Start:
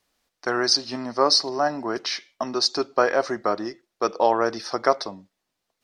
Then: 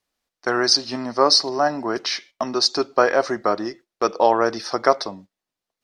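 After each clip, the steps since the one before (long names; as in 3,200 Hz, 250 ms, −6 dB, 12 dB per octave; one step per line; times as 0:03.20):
noise gate −45 dBFS, range −10 dB
level +3 dB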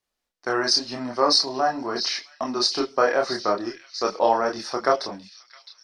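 echo through a band-pass that steps 663 ms, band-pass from 3,300 Hz, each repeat 0.7 octaves, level −8 dB
multi-voice chorus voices 6, 0.79 Hz, delay 28 ms, depth 3.4 ms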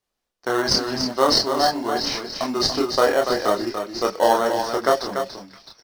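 in parallel at −7.5 dB: decimation without filtering 18×
on the sum: single-tap delay 288 ms −7 dB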